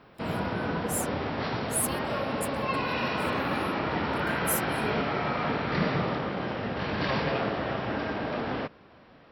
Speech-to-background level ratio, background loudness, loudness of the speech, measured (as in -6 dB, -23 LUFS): -4.5 dB, -30.0 LUFS, -34.5 LUFS